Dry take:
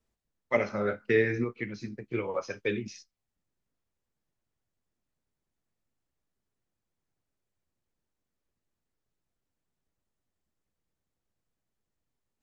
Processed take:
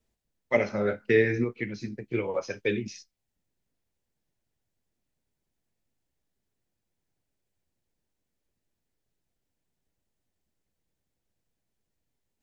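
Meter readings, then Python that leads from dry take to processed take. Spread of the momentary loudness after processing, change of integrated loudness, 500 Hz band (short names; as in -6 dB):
13 LU, +2.5 dB, +3.0 dB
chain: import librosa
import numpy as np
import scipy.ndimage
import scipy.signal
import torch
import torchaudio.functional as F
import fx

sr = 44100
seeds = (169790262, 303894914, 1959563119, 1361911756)

y = fx.peak_eq(x, sr, hz=1200.0, db=-6.5, octaves=0.55)
y = y * librosa.db_to_amplitude(3.0)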